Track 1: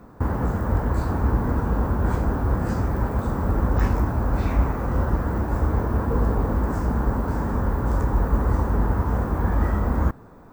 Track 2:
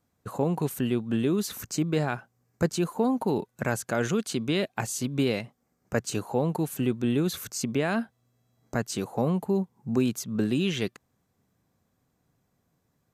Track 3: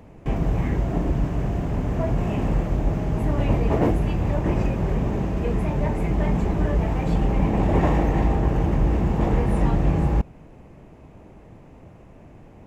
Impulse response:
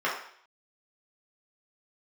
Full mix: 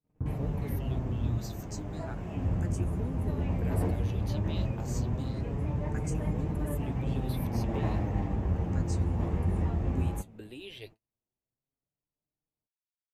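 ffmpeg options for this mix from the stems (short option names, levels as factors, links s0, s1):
-filter_complex "[0:a]bandpass=f=120:t=q:w=1.2:csg=0,volume=0.944,asplit=3[s0][s1][s2];[s0]atrim=end=1.38,asetpts=PTS-STARTPTS,afade=t=out:st=1.376:d=0.004:c=hsin[s3];[s1]atrim=start=1.38:end=2.35,asetpts=PTS-STARTPTS,volume=0[s4];[s2]atrim=start=2.35,asetpts=PTS-STARTPTS,afade=t=in:d=0.004:c=hsin[s5];[s3][s4][s5]concat=n=3:v=0:a=1[s6];[1:a]highshelf=f=3400:g=7,asplit=2[s7][s8];[s8]afreqshift=0.29[s9];[s7][s9]amix=inputs=2:normalize=1,volume=0.266[s10];[2:a]volume=0.335[s11];[s6][s10][s11]amix=inputs=3:normalize=0,agate=range=0.0158:threshold=0.00447:ratio=16:detection=peak,flanger=delay=6.5:depth=5.2:regen=45:speed=0.16:shape=sinusoidal"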